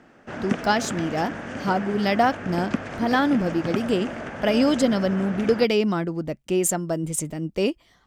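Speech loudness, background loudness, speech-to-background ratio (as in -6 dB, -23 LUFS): -24.0 LUFS, -32.5 LUFS, 8.5 dB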